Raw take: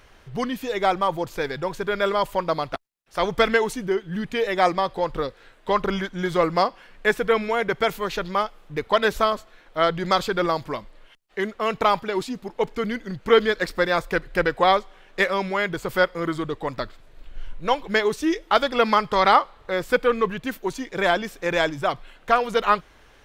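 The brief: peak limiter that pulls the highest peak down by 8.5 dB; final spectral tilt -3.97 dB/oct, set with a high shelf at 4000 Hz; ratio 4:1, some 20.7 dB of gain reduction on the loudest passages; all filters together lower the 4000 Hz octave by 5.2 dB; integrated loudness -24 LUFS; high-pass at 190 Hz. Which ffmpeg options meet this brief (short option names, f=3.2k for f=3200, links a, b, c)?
-af "highpass=190,highshelf=f=4k:g=-7,equalizer=f=4k:t=o:g=-3,acompressor=threshold=-37dB:ratio=4,volume=17dB,alimiter=limit=-11dB:level=0:latency=1"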